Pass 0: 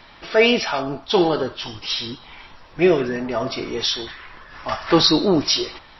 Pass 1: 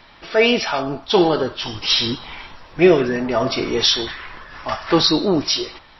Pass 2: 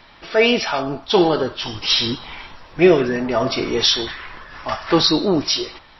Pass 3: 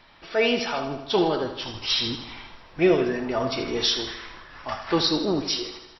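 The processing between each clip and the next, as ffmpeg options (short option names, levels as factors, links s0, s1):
-af "dynaudnorm=f=110:g=9:m=3.76,volume=0.891"
-af anull
-af "aecho=1:1:79|158|237|316|395|474|553:0.282|0.163|0.0948|0.055|0.0319|0.0185|0.0107,volume=0.447"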